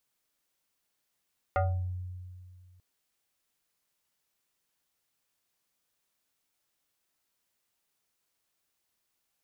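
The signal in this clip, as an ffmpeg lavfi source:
ffmpeg -f lavfi -i "aevalsrc='0.075*pow(10,-3*t/2.17)*sin(2*PI*90.8*t+2*pow(10,-3*t/0.46)*sin(2*PI*7.28*90.8*t))':duration=1.24:sample_rate=44100" out.wav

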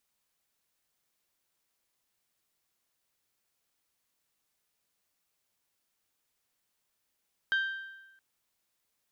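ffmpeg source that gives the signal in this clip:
ffmpeg -f lavfi -i "aevalsrc='0.0668*pow(10,-3*t/1.08)*sin(2*PI*1570*t)+0.0211*pow(10,-3*t/0.877)*sin(2*PI*3140*t)+0.00668*pow(10,-3*t/0.831)*sin(2*PI*3768*t)+0.00211*pow(10,-3*t/0.777)*sin(2*PI*4710*t)+0.000668*pow(10,-3*t/0.713)*sin(2*PI*6280*t)':duration=0.67:sample_rate=44100" out.wav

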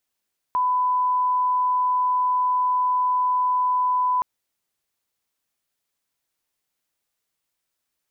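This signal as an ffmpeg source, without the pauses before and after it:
ffmpeg -f lavfi -i "sine=frequency=1000:duration=3.67:sample_rate=44100,volume=0.06dB" out.wav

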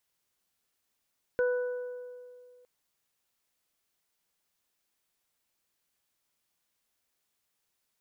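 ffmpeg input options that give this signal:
ffmpeg -f lavfi -i "aevalsrc='0.0708*pow(10,-3*t/2.25)*sin(2*PI*495*t)+0.0075*pow(10,-3*t/1.65)*sin(2*PI*990*t)+0.0251*pow(10,-3*t/1.35)*sin(2*PI*1485*t)':duration=1.26:sample_rate=44100" out.wav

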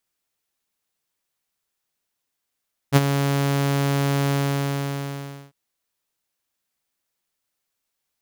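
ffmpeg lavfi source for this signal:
ffmpeg -f lavfi -i "aevalsrc='0.447*(2*mod(140*t,1)-1)':duration=2.6:sample_rate=44100,afade=type=in:duration=0.042,afade=type=out:start_time=0.042:duration=0.033:silence=0.335,afade=type=out:start_time=1.39:duration=1.21" out.wav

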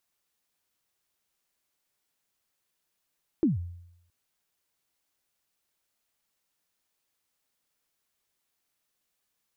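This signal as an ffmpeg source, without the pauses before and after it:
ffmpeg -f lavfi -i "aevalsrc='0.133*pow(10,-3*t/0.79)*sin(2*PI*(360*0.148/log(87/360)*(exp(log(87/360)*min(t,0.148)/0.148)-1)+87*max(t-0.148,0)))':duration=0.67:sample_rate=44100" out.wav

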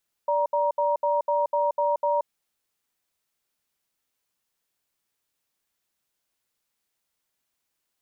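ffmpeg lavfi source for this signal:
ffmpeg -f lavfi -i "aevalsrc='0.0708*(sin(2*PI*584*t)+sin(2*PI*943*t))*clip(min(mod(t,0.25),0.18-mod(t,0.25))/0.005,0,1)':duration=1.97:sample_rate=44100" out.wav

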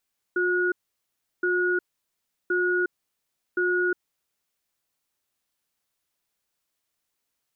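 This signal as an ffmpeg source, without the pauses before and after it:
ffmpeg -f lavfi -i "aevalsrc='0.0668*(sin(2*PI*359*t)+sin(2*PI*1450*t))*clip(min(mod(t,1.07),0.36-mod(t,1.07))/0.005,0,1)':duration=3.83:sample_rate=44100" out.wav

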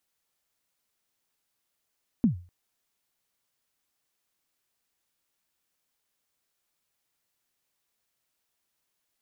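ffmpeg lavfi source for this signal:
ffmpeg -f lavfi -i "aevalsrc='0.188*pow(10,-3*t/0.36)*sin(2*PI*(260*0.115/log(88/260)*(exp(log(88/260)*min(t,0.115)/0.115)-1)+88*max(t-0.115,0)))':duration=0.25:sample_rate=44100" out.wav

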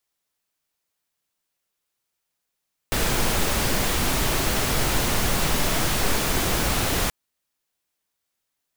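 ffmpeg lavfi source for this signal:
ffmpeg -f lavfi -i "anoisesrc=color=pink:amplitude=0.407:duration=4.18:sample_rate=44100:seed=1" out.wav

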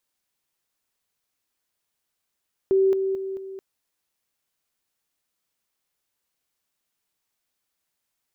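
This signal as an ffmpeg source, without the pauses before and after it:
ffmpeg -f lavfi -i "aevalsrc='pow(10,(-15.5-6*floor(t/0.22))/20)*sin(2*PI*385*t)':duration=0.88:sample_rate=44100" out.wav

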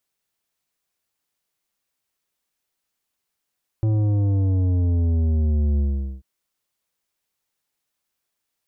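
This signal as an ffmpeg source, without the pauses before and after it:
ffmpeg -f lavfi -i "aevalsrc='0.126*clip((2.39-t)/0.43,0,1)*tanh(3.16*sin(2*PI*110*2.39/log(65/110)*(exp(log(65/110)*t/2.39)-1)))/tanh(3.16)':duration=2.39:sample_rate=44100" out.wav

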